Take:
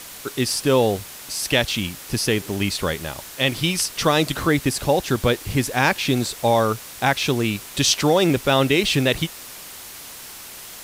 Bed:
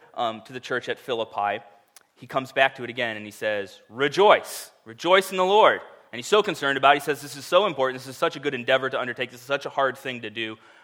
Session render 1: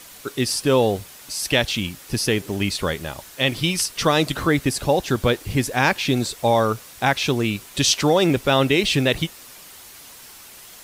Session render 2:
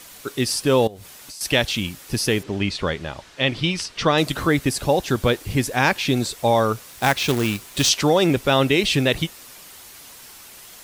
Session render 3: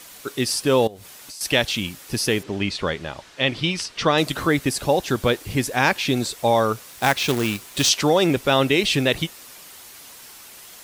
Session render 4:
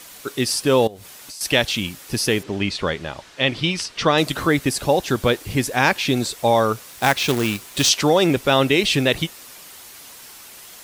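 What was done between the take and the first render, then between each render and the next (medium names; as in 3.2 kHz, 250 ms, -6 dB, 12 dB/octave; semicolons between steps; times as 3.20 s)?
noise reduction 6 dB, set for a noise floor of -39 dBFS
0.87–1.41 s: compression 16:1, threshold -34 dBFS; 2.43–4.18 s: low-pass 4.7 kHz; 6.89–7.89 s: companded quantiser 4-bit
bass shelf 120 Hz -6 dB
trim +1.5 dB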